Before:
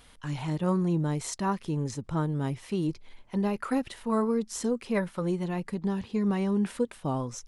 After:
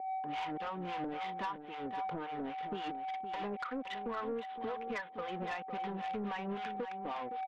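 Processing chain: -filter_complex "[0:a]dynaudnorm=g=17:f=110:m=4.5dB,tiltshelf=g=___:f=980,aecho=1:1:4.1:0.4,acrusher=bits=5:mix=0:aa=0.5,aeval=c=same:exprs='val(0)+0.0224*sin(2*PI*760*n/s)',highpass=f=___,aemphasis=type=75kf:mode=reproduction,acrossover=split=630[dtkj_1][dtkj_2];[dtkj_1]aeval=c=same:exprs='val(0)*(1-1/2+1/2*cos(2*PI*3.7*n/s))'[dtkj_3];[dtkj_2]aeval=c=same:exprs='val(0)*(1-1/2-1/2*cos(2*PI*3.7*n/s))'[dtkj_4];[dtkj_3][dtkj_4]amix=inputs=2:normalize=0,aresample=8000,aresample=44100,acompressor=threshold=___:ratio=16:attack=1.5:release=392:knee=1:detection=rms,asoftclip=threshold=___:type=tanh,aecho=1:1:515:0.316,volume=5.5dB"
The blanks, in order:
-5, 370, -34dB, -37.5dB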